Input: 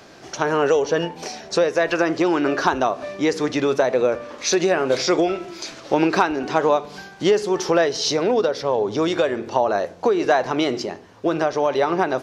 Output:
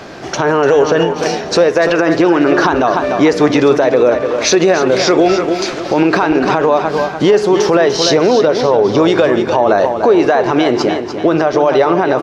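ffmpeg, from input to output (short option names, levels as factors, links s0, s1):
-filter_complex "[0:a]highshelf=f=4600:g=-10,asplit=2[s0][s1];[s1]acompressor=threshold=0.0398:ratio=6,volume=0.841[s2];[s0][s2]amix=inputs=2:normalize=0,aecho=1:1:295|590|885|1180:0.335|0.131|0.0509|0.0199,alimiter=level_in=3.35:limit=0.891:release=50:level=0:latency=1,volume=0.891"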